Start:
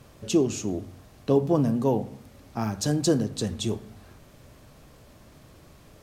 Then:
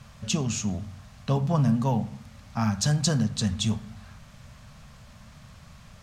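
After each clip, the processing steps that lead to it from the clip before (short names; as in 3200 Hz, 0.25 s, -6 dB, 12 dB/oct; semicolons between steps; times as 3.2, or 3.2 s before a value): EQ curve 220 Hz 0 dB, 320 Hz -23 dB, 600 Hz -7 dB, 1200 Hz 0 dB, 6900 Hz -1 dB, 13000 Hz -11 dB; gain +4.5 dB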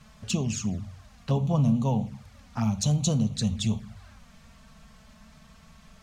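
envelope flanger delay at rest 5.7 ms, full sweep at -22.5 dBFS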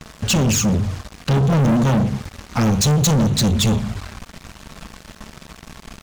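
sample leveller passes 5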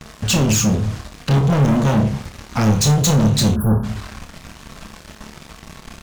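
flutter echo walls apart 4.8 m, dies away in 0.24 s; spectral delete 3.56–3.84, 1700–10000 Hz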